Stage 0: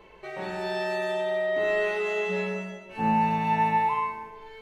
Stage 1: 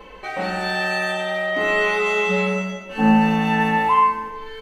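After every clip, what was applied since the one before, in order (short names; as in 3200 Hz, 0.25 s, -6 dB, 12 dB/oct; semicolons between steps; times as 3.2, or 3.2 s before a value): comb 3.9 ms, depth 85%; gain +8.5 dB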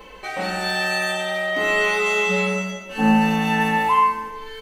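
high shelf 4500 Hz +11 dB; gain -1.5 dB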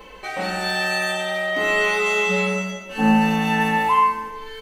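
nothing audible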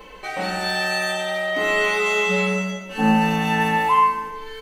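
shoebox room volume 3600 m³, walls furnished, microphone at 0.45 m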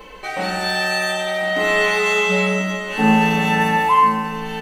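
echo 1.036 s -10.5 dB; gain +2.5 dB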